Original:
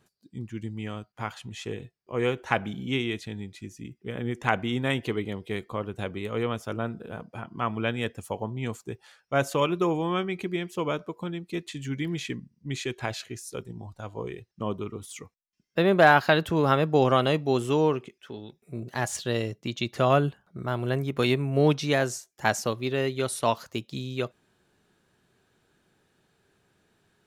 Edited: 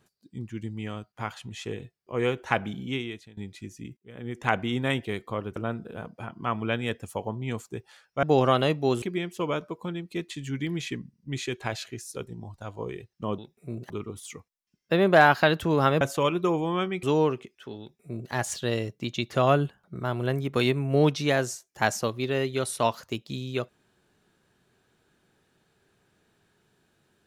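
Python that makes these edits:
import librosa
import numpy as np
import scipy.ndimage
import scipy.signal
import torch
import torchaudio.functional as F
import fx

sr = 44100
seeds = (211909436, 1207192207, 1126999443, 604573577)

y = fx.edit(x, sr, fx.fade_out_to(start_s=2.74, length_s=0.63, floor_db=-20.5),
    fx.fade_in_span(start_s=3.97, length_s=0.54),
    fx.cut(start_s=5.05, length_s=0.42),
    fx.cut(start_s=5.98, length_s=0.73),
    fx.swap(start_s=9.38, length_s=1.02, other_s=16.87, other_length_s=0.79),
    fx.duplicate(start_s=18.43, length_s=0.52, to_s=14.76), tone=tone)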